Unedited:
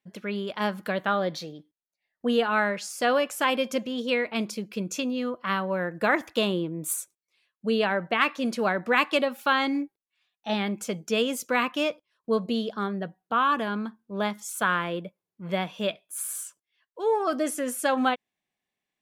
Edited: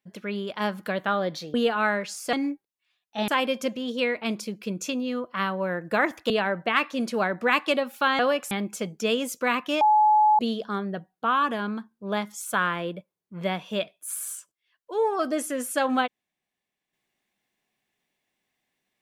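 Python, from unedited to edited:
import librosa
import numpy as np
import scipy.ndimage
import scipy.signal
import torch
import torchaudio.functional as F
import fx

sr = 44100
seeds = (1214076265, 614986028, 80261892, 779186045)

y = fx.edit(x, sr, fx.cut(start_s=1.54, length_s=0.73),
    fx.swap(start_s=3.06, length_s=0.32, other_s=9.64, other_length_s=0.95),
    fx.cut(start_s=6.4, length_s=1.35),
    fx.bleep(start_s=11.89, length_s=0.58, hz=852.0, db=-15.0), tone=tone)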